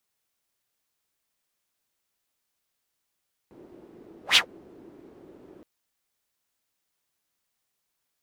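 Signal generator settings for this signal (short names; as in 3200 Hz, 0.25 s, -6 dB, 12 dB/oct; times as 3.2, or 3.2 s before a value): whoosh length 2.12 s, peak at 0.85, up 0.12 s, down 0.11 s, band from 340 Hz, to 3400 Hz, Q 3.4, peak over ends 34 dB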